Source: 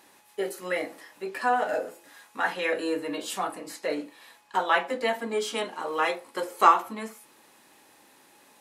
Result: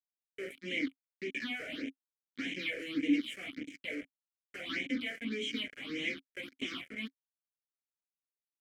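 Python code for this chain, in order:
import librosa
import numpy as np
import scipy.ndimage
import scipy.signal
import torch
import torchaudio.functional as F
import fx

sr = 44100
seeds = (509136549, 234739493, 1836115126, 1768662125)

y = fx.fuzz(x, sr, gain_db=41.0, gate_db=-36.0)
y = fx.phaser_stages(y, sr, stages=6, low_hz=250.0, high_hz=1300.0, hz=1.7, feedback_pct=25)
y = fx.vowel_filter(y, sr, vowel='i')
y = y * librosa.db_to_amplitude(-2.5)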